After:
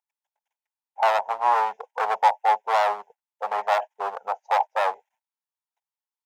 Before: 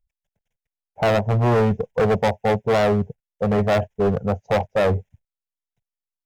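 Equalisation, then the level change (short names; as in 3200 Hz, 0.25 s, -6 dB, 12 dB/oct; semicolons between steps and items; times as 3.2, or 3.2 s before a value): ladder high-pass 810 Hz, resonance 70%; +8.0 dB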